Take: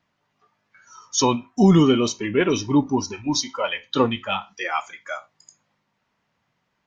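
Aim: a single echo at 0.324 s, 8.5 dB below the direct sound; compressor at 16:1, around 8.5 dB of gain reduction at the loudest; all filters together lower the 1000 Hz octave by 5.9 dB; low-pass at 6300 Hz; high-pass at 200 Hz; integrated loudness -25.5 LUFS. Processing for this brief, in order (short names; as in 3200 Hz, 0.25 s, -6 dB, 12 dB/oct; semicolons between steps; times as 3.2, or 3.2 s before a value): HPF 200 Hz; LPF 6300 Hz; bell 1000 Hz -7.5 dB; compressor 16:1, threshold -21 dBFS; echo 0.324 s -8.5 dB; gain +2.5 dB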